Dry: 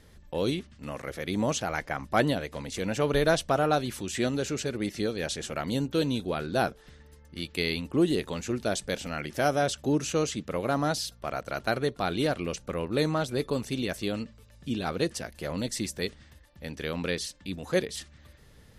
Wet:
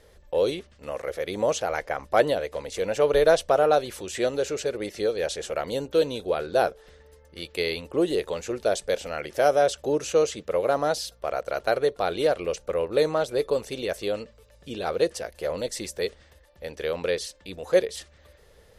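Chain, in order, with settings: graphic EQ 125/250/500 Hz -7/-9/+11 dB

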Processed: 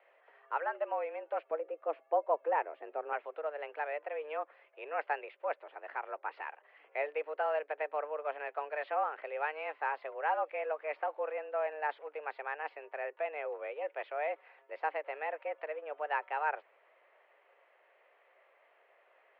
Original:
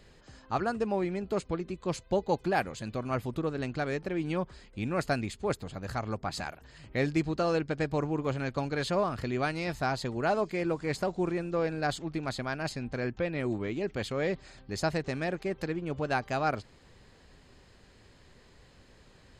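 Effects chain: mistuned SSB +150 Hz 340–2500 Hz; 1.51–3.13 tilt -4.5 dB/oct; gain -3.5 dB

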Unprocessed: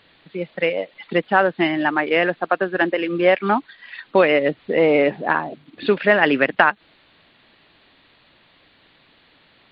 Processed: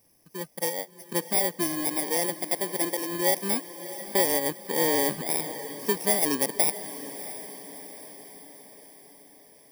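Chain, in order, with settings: FFT order left unsorted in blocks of 32 samples; 4.88–5.41 transient shaper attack -1 dB, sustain +8 dB; diffused feedback echo 0.67 s, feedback 56%, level -13 dB; gain -8.5 dB

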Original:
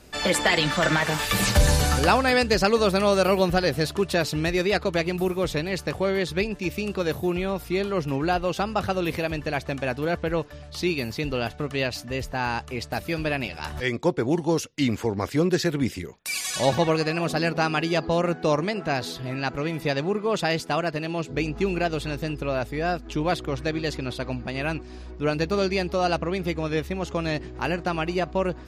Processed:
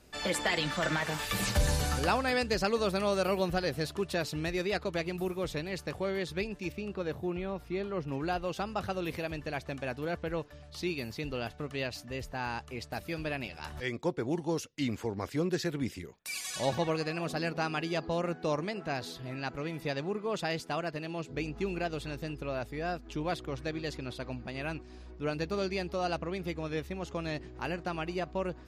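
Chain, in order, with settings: 6.72–8.12 LPF 2300 Hz 6 dB/oct; gain -9 dB

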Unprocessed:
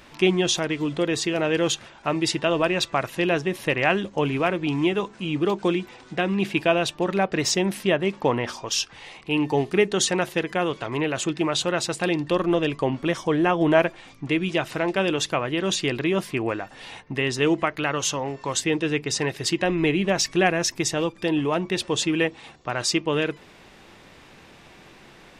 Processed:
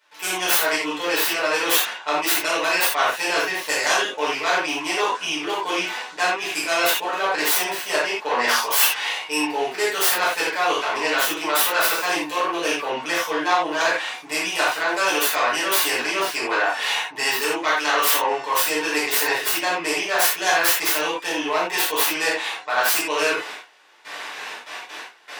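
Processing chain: tracing distortion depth 0.48 ms; gate with hold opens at -38 dBFS; reverse; compressor 6:1, threshold -32 dBFS, peak gain reduction 19.5 dB; reverse; HPF 820 Hz 12 dB/oct; reverb, pre-delay 7 ms, DRR -10 dB; gain +7 dB

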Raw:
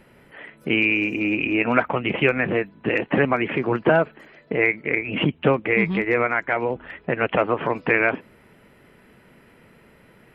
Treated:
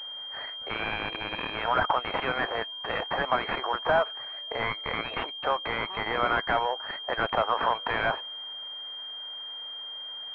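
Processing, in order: in parallel at -1.5 dB: negative-ratio compressor -26 dBFS, ratio -1; on the sum: HPF 720 Hz 24 dB/oct; hard clip -14.5 dBFS, distortion -12 dB; pulse-width modulation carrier 3200 Hz

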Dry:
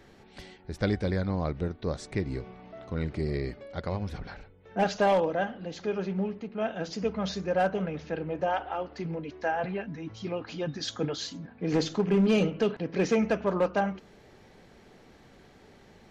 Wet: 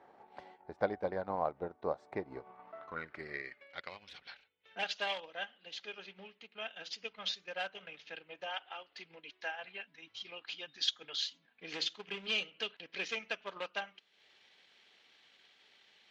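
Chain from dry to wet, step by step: band-pass sweep 820 Hz -> 3200 Hz, 2.29–4.14; transient shaper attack +3 dB, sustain -8 dB; gain +4 dB

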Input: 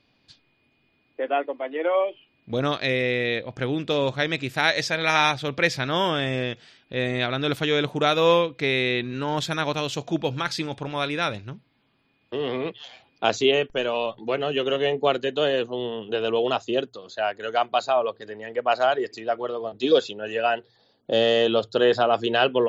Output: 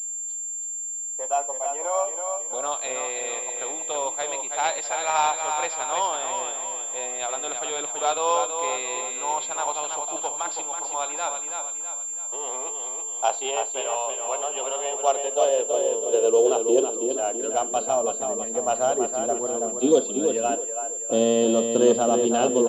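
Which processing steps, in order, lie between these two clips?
half-wave gain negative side -3 dB; bell 1800 Hz -14.5 dB 1 oct; feedback echo 0.327 s, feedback 46%, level -6 dB; high-pass sweep 840 Hz -> 220 Hz, 14.85–17.91; 20.55–21.11 three-band isolator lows -22 dB, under 440 Hz, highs -16 dB, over 2100 Hz; Schroeder reverb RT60 0.35 s, combs from 27 ms, DRR 16 dB; pulse-width modulation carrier 7300 Hz

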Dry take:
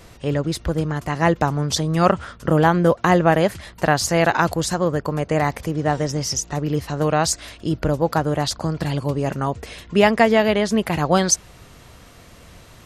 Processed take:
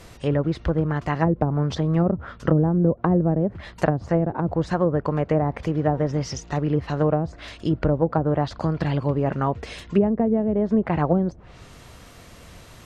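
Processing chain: treble ducked by the level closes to 350 Hz, closed at -13 dBFS

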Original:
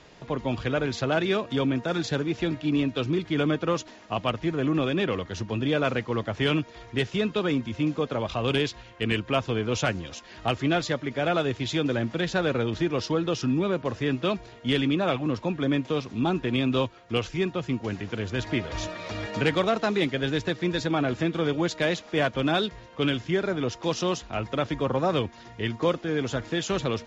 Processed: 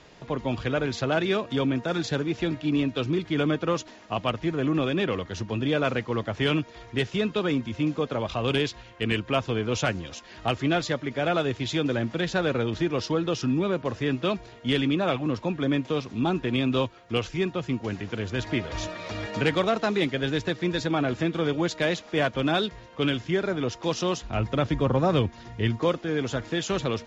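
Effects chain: 24.24–25.79 low shelf 190 Hz +9.5 dB

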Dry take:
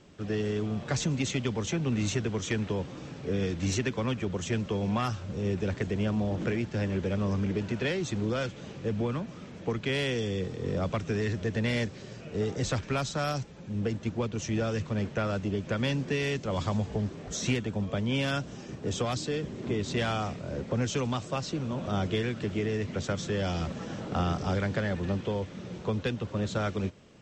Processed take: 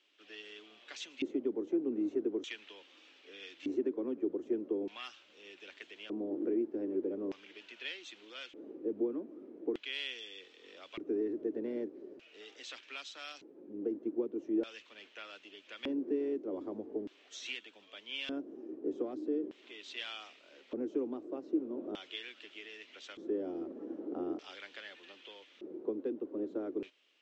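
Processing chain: resonant low shelf 210 Hz -12.5 dB, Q 3; LFO band-pass square 0.41 Hz 340–3000 Hz; gain -3 dB

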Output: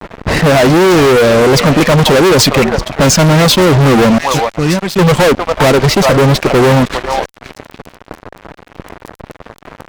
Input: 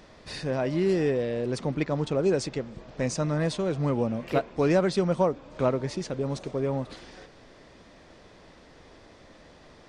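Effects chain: low-pass opened by the level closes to 1000 Hz, open at -20 dBFS; reverb removal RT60 0.93 s; 4.17–5 passive tone stack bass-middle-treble 6-0-2; in parallel at -11 dB: one-sided clip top -25 dBFS; on the sum: vibrato 0.72 Hz 91 cents; crackle 21/s -51 dBFS; on a send: delay with a stepping band-pass 0.405 s, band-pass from 930 Hz, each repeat 1.4 oct, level -8 dB; on the sum: vibrato 2.7 Hz 30 cents; fuzz box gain 40 dB, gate -49 dBFS; gain +7 dB

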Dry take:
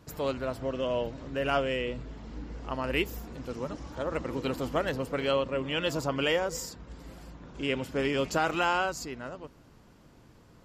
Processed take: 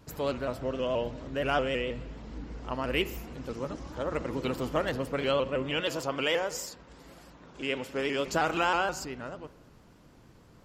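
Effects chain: 5.8–8.28 low shelf 200 Hz -11.5 dB; spring tank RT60 1 s, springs 42/59 ms, chirp 50 ms, DRR 15.5 dB; shaped vibrato saw up 6.3 Hz, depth 100 cents

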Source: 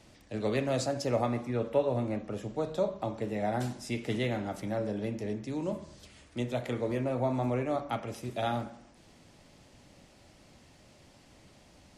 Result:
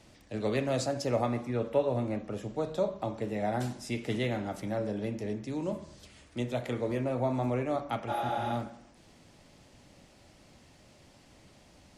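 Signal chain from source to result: spectral repair 8.11–8.48, 310–10000 Hz after

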